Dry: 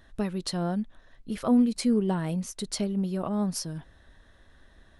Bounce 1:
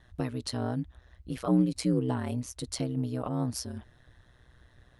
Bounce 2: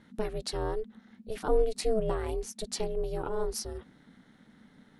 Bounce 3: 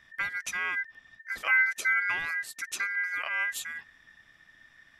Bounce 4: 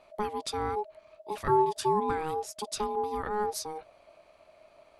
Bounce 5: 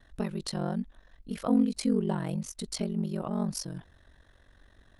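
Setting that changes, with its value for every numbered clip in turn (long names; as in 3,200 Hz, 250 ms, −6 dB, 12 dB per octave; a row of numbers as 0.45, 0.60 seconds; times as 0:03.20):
ring modulation, frequency: 62, 220, 1,800, 630, 23 Hertz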